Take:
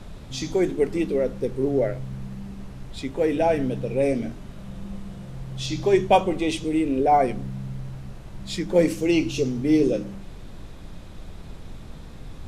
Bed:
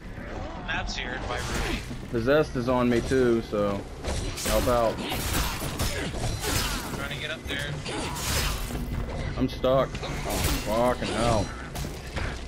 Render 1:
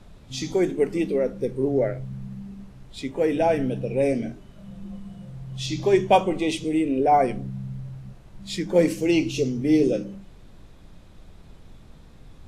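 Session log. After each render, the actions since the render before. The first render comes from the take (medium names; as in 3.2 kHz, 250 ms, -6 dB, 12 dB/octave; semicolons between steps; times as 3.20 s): noise print and reduce 8 dB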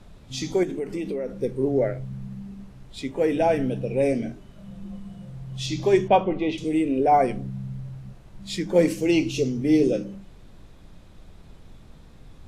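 0.63–1.31 s: compression, threshold -25 dBFS; 6.08–6.58 s: distance through air 260 m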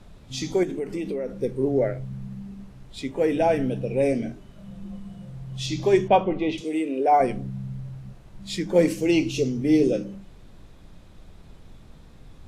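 6.61–7.20 s: high-pass 330 Hz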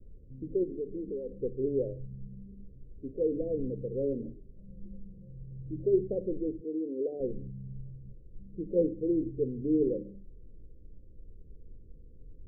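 steep low-pass 510 Hz 72 dB/octave; peaking EQ 190 Hz -11.5 dB 2.3 oct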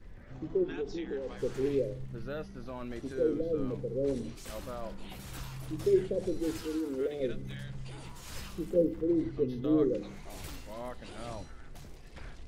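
add bed -18 dB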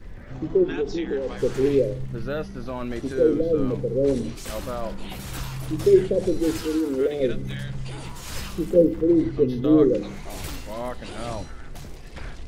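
trim +10 dB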